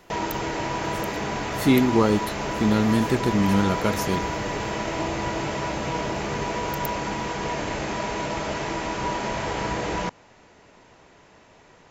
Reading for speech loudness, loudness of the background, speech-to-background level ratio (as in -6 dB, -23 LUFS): -22.5 LUFS, -28.0 LUFS, 5.5 dB